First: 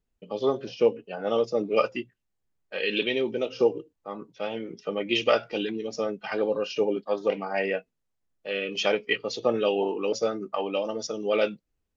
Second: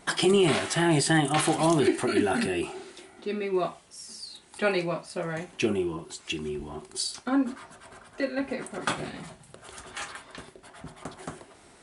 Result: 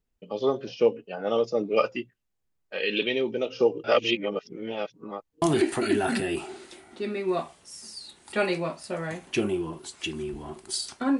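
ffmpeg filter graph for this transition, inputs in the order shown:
-filter_complex "[0:a]apad=whole_dur=11.19,atrim=end=11.19,asplit=2[s0][s1];[s0]atrim=end=3.842[s2];[s1]atrim=start=3.838:end=5.422,asetpts=PTS-STARTPTS,areverse[s3];[1:a]atrim=start=1.678:end=7.45[s4];[s2][s3]acrossfade=d=0.004:c1=hsin:c2=hsin[s5];[s5][s4]acrossfade=d=0.004:c1=hsin:c2=hsin"

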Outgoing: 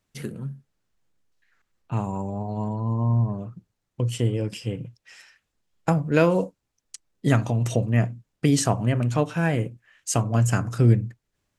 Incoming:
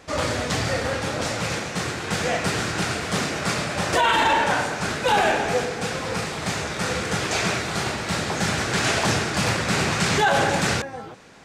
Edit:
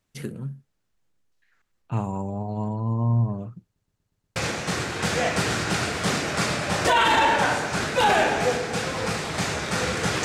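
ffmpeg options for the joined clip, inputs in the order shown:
-filter_complex "[0:a]apad=whole_dur=10.24,atrim=end=10.24,asplit=6[s0][s1][s2][s3][s4][s5];[s0]atrim=end=3.762[s6];[s1]atrim=start=3.638:end=3.762[s7];[s2]atrim=start=3.638:end=3.762[s8];[s3]atrim=start=3.638:end=3.762[s9];[s4]atrim=start=3.638:end=3.762[s10];[s5]atrim=start=3.638:end=3.762[s11];[1:a]atrim=start=1.438:end=7.32[s12];[s6][s7]acrossfade=d=0.004:c1=hsin:c2=hsin[s13];[s13][s8]acrossfade=d=0.004:c1=hsin:c2=hsin[s14];[s14][s9]acrossfade=d=0.004:c1=hsin:c2=hsin[s15];[s15][s10]acrossfade=d=0.004:c1=hsin:c2=hsin[s16];[s16][s11]acrossfade=d=0.004:c1=hsin:c2=hsin[s17];[s17][s12]acrossfade=d=0.004:c1=hsin:c2=hsin"

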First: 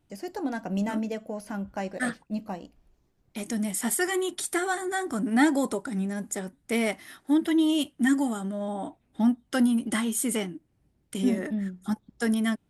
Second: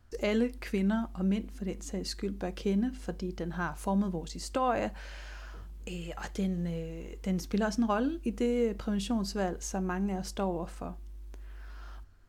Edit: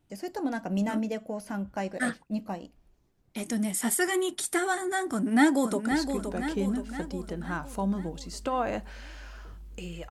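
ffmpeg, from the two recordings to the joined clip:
-filter_complex "[0:a]apad=whole_dur=10.1,atrim=end=10.1,atrim=end=5.912[s0];[1:a]atrim=start=1.998:end=6.19[s1];[s0][s1]acrossfade=d=0.004:c1=hsin:c2=hsin,asplit=2[s2][s3];[s3]afade=t=in:st=5.12:d=0.01,afade=t=out:st=5.91:d=0.01,aecho=0:1:520|1040|1560|2080|2600|3120|3640:0.473151|0.260233|0.143128|0.0787205|0.0432963|0.023813|0.0130971[s4];[s2][s4]amix=inputs=2:normalize=0"

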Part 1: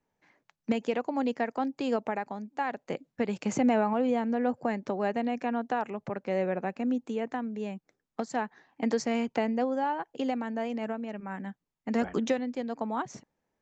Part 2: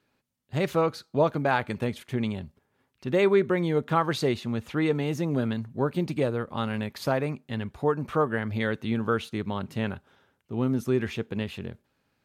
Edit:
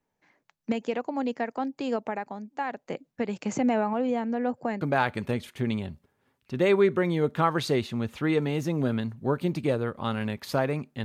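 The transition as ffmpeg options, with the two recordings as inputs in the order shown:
-filter_complex "[0:a]apad=whole_dur=11.04,atrim=end=11.04,atrim=end=4.812[s0];[1:a]atrim=start=1.338:end=7.57[s1];[s0][s1]acrossfade=d=0.004:c1=hsin:c2=hsin"

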